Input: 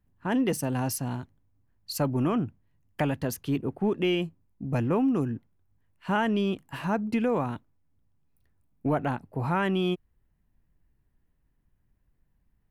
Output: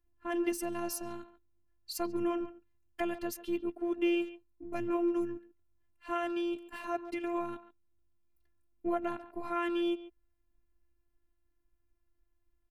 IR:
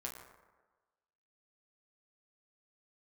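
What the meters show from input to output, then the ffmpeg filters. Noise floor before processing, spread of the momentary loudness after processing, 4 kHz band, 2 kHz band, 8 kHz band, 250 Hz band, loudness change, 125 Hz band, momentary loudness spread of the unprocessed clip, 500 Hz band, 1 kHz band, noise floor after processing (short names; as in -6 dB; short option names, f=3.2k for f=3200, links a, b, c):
-72 dBFS, 13 LU, -7.5 dB, -7.5 dB, n/a, -6.5 dB, -6.5 dB, -25.5 dB, 11 LU, -5.0 dB, -6.5 dB, -76 dBFS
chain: -filter_complex "[0:a]afftfilt=real='hypot(re,im)*cos(PI*b)':imag='0':win_size=512:overlap=0.75,asplit=2[a][b];[b]adelay=140,highpass=300,lowpass=3.4k,asoftclip=type=hard:threshold=-25dB,volume=-14dB[c];[a][c]amix=inputs=2:normalize=0,volume=-2.5dB"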